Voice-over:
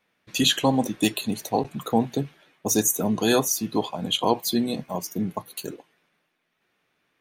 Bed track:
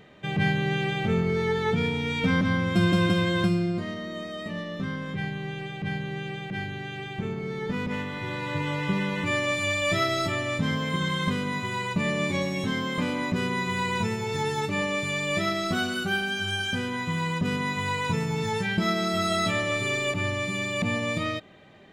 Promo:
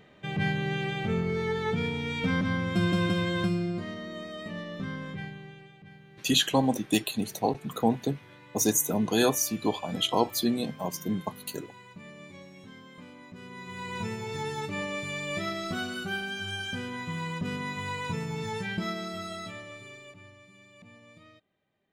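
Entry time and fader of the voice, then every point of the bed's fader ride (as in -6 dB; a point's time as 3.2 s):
5.90 s, -3.0 dB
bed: 5.06 s -4 dB
5.9 s -20.5 dB
13.3 s -20.5 dB
14.07 s -6 dB
18.74 s -6 dB
20.46 s -26 dB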